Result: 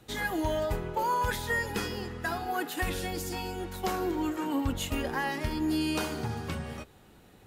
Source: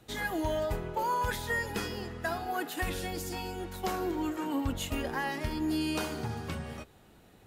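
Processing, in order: band-stop 660 Hz, Q 17; trim +2 dB

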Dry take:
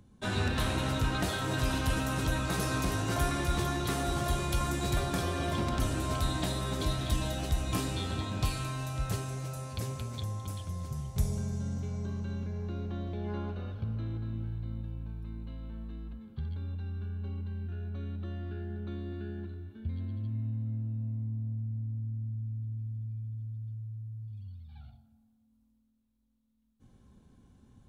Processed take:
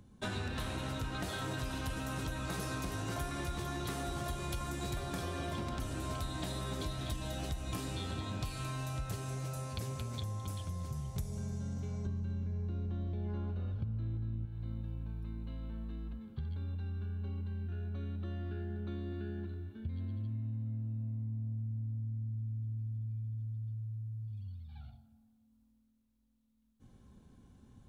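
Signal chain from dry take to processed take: 12.06–14.46 s: bass shelf 220 Hz +11.5 dB; compression 6:1, threshold -35 dBFS, peak gain reduction 13.5 dB

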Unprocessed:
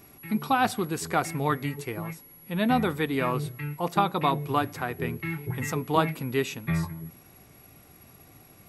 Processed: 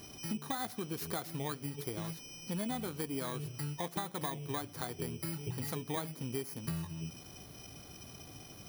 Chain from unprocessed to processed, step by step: bit-reversed sample order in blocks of 16 samples; compression 6:1, threshold -38 dBFS, peak gain reduction 19 dB; trim +2 dB

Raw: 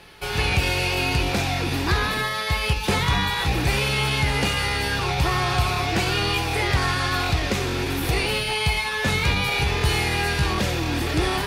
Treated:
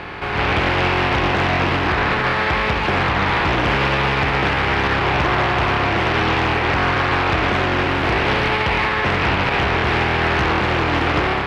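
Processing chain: spectral levelling over time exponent 0.4; low-pass 1.6 kHz 12 dB/octave; tilt EQ +2 dB/octave; level rider; peak limiter -7 dBFS, peak gain reduction 5.5 dB; loudspeaker Doppler distortion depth 0.55 ms; trim -2 dB

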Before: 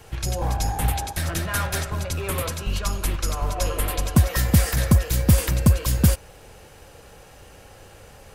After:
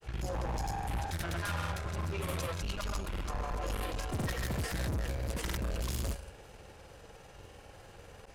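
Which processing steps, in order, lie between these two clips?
treble shelf 8.5 kHz -8.5 dB; on a send: flutter echo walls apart 9.7 m, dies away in 0.21 s; on the sum: valve stage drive 29 dB, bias 0.6; granulator 100 ms, grains 20 per s, pitch spread up and down by 0 st; trim -1.5 dB

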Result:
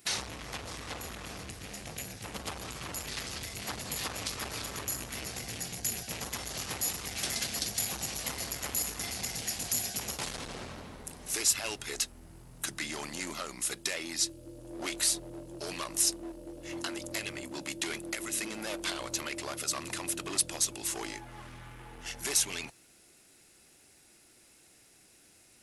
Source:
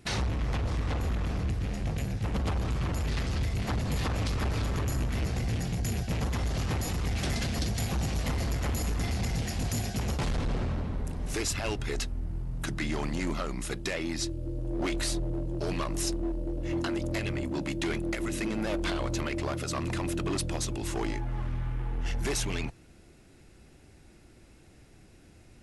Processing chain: RIAA curve recording; trim -4 dB

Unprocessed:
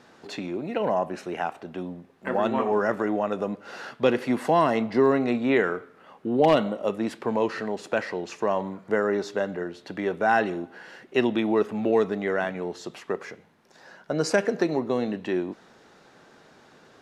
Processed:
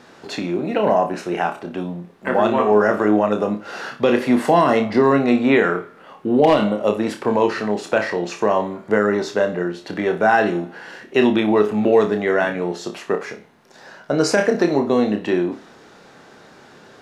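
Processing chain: on a send: flutter echo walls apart 4.9 m, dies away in 0.26 s; on the sum: loudness maximiser +11 dB; trim -4 dB

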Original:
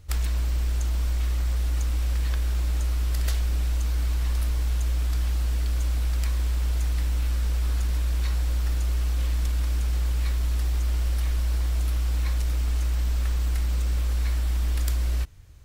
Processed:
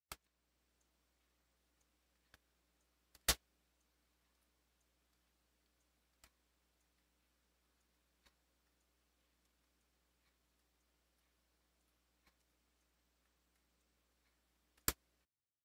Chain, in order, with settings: high-pass 200 Hz 12 dB/octave; gate -31 dBFS, range -55 dB; level rider gain up to 6 dB; trim +8.5 dB

